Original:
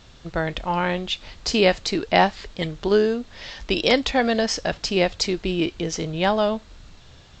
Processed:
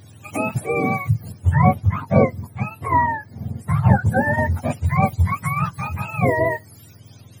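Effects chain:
frequency axis turned over on the octave scale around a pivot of 640 Hz
0:01.32–0:04.12: high-shelf EQ 2,500 Hz −9 dB
level +2.5 dB

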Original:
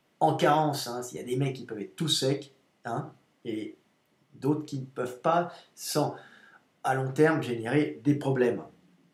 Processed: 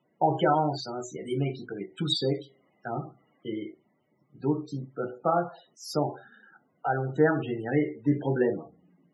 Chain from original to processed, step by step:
spectral peaks only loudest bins 32
0:00.98–0:03.49: one half of a high-frequency compander encoder only

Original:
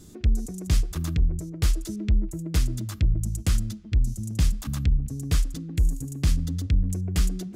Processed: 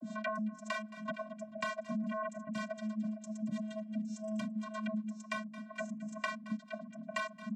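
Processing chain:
noise gate −39 dBFS, range −14 dB
three-way crossover with the lows and the highs turned down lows −24 dB, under 370 Hz, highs −15 dB, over 2,300 Hz
comb filter 3.5 ms, depth 77%
output level in coarse steps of 20 dB
channel vocoder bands 32, square 215 Hz
sine wavefolder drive 17 dB, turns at −30 dBFS
two-band tremolo in antiphase 2 Hz, depth 100%, crossover 420 Hz
on a send: repeating echo 219 ms, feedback 23%, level −19 dB
on the sum: multiband upward and downward compressor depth 100%
level +1 dB

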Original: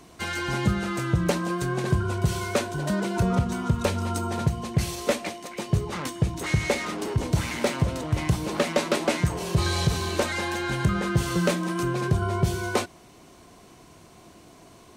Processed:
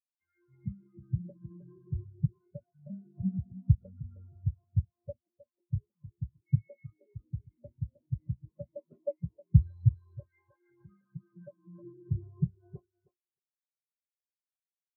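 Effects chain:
0:09.96–0:11.75: low-shelf EQ 200 Hz −7.5 dB
on a send: repeating echo 312 ms, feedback 41%, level −4 dB
on the sum: every bin expanded away from the loudest bin 4 to 1

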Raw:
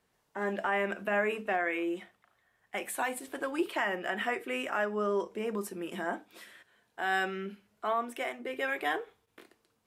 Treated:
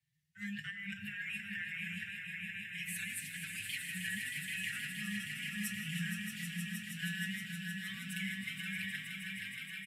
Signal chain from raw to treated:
Chebyshev band-stop filter 160–1,800 Hz, order 5
low-shelf EQ 470 Hz +10.5 dB
compressor whose output falls as the input rises −42 dBFS, ratio −1
high-pass filter 110 Hz 12 dB per octave
parametric band 300 Hz +10 dB 2.1 octaves
echo that builds up and dies away 157 ms, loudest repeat 5, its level −7.5 dB
noise reduction from a noise print of the clip's start 12 dB
convolution reverb RT60 0.55 s, pre-delay 99 ms, DRR 12 dB
barber-pole flanger 5.8 ms +1.9 Hz
level +2 dB

